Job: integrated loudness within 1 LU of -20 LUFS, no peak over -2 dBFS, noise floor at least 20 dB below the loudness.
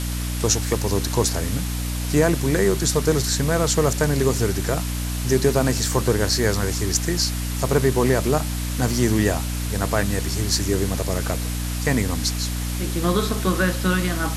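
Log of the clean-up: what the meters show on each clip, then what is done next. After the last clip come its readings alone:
hum 60 Hz; harmonics up to 300 Hz; hum level -24 dBFS; noise floor -26 dBFS; noise floor target -42 dBFS; loudness -21.5 LUFS; peak -5.5 dBFS; loudness target -20.0 LUFS
-> de-hum 60 Hz, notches 5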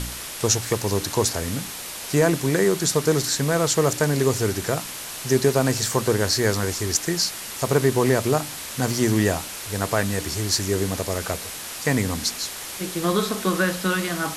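hum none; noise floor -34 dBFS; noise floor target -43 dBFS
-> denoiser 9 dB, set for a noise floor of -34 dBFS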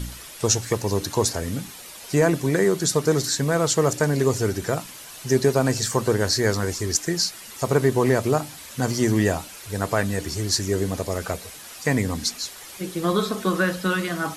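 noise floor -41 dBFS; noise floor target -43 dBFS
-> denoiser 6 dB, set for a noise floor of -41 dBFS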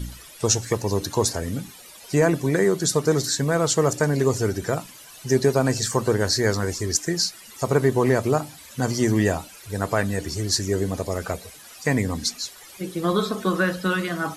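noise floor -45 dBFS; loudness -23.0 LUFS; peak -6.5 dBFS; loudness target -20.0 LUFS
-> gain +3 dB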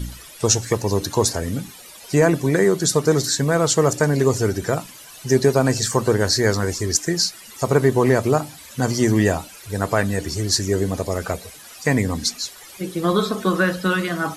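loudness -20.0 LUFS; peak -3.5 dBFS; noise floor -42 dBFS

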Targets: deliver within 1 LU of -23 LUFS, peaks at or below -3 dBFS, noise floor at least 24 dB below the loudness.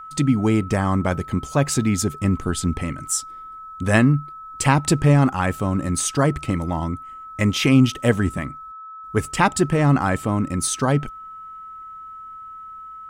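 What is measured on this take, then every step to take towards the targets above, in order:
steady tone 1300 Hz; tone level -35 dBFS; loudness -20.5 LUFS; peak -3.0 dBFS; loudness target -23.0 LUFS
-> notch 1300 Hz, Q 30; gain -2.5 dB

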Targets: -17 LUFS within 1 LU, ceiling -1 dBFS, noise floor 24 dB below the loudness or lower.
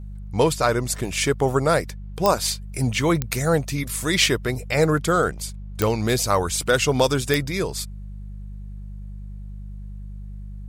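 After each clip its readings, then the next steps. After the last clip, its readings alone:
clicks 4; hum 50 Hz; harmonics up to 200 Hz; hum level -32 dBFS; loudness -22.0 LUFS; peak -4.5 dBFS; loudness target -17.0 LUFS
-> de-click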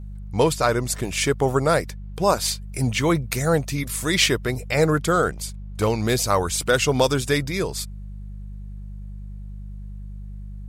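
clicks 0; hum 50 Hz; harmonics up to 200 Hz; hum level -32 dBFS
-> de-hum 50 Hz, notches 4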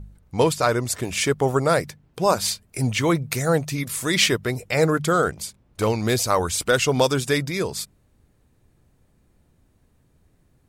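hum none; loudness -22.0 LUFS; peak -5.0 dBFS; loudness target -17.0 LUFS
-> gain +5 dB; limiter -1 dBFS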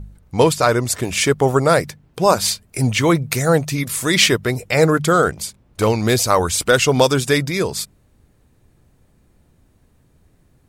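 loudness -17.0 LUFS; peak -1.0 dBFS; noise floor -57 dBFS

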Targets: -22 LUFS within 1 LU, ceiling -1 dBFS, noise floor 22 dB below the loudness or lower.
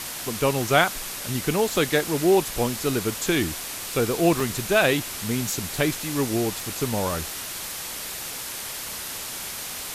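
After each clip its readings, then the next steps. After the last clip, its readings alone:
dropouts 1; longest dropout 3.3 ms; noise floor -34 dBFS; noise floor target -47 dBFS; loudness -24.5 LUFS; peak -4.0 dBFS; loudness target -22.0 LUFS
-> interpolate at 4.4, 3.3 ms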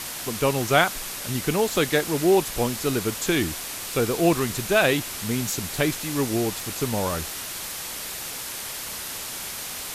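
dropouts 0; noise floor -34 dBFS; noise floor target -47 dBFS
-> denoiser 13 dB, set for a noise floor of -34 dBFS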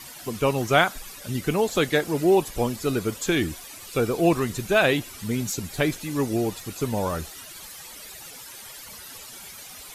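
noise floor -42 dBFS; noise floor target -47 dBFS
-> denoiser 6 dB, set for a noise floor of -42 dBFS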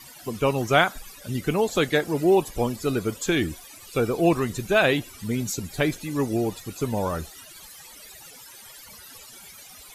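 noise floor -46 dBFS; noise floor target -47 dBFS
-> denoiser 6 dB, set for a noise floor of -46 dBFS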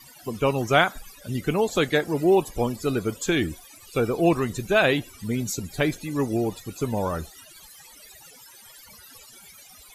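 noise floor -49 dBFS; loudness -24.5 LUFS; peak -4.0 dBFS; loudness target -22.0 LUFS
-> gain +2.5 dB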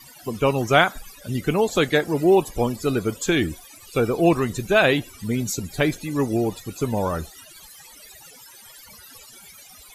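loudness -22.0 LUFS; peak -1.5 dBFS; noise floor -47 dBFS

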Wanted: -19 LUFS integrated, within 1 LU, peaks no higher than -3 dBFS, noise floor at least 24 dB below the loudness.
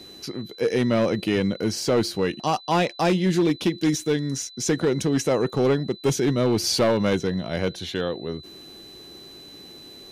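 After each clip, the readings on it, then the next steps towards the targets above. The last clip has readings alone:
clipped 1.3%; flat tops at -14.5 dBFS; steady tone 4000 Hz; tone level -43 dBFS; loudness -23.5 LUFS; peak -14.5 dBFS; loudness target -19.0 LUFS
-> clip repair -14.5 dBFS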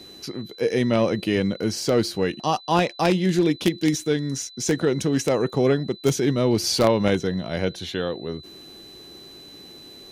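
clipped 0.0%; steady tone 4000 Hz; tone level -43 dBFS
-> notch 4000 Hz, Q 30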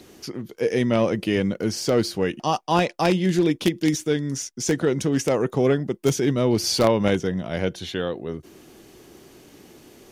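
steady tone none; loudness -23.0 LUFS; peak -5.5 dBFS; loudness target -19.0 LUFS
-> gain +4 dB; limiter -3 dBFS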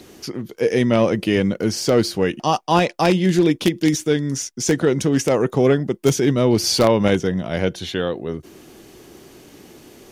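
loudness -19.0 LUFS; peak -3.0 dBFS; noise floor -46 dBFS

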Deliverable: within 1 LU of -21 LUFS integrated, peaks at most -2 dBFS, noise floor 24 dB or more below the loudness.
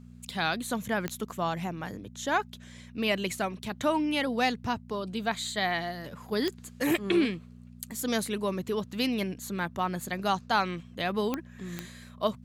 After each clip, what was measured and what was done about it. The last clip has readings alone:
clicks 4; hum 60 Hz; harmonics up to 240 Hz; hum level -46 dBFS; loudness -30.5 LUFS; peak -13.0 dBFS; loudness target -21.0 LUFS
-> de-click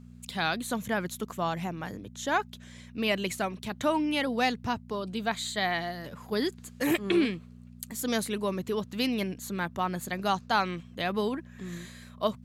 clicks 0; hum 60 Hz; harmonics up to 240 Hz; hum level -46 dBFS
-> de-hum 60 Hz, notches 4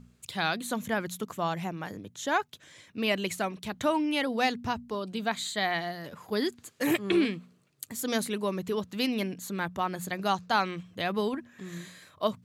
hum none; loudness -30.5 LUFS; peak -12.5 dBFS; loudness target -21.0 LUFS
-> gain +9.5 dB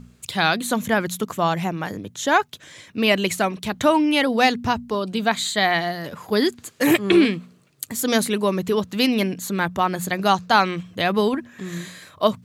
loudness -21.0 LUFS; peak -3.0 dBFS; noise floor -54 dBFS

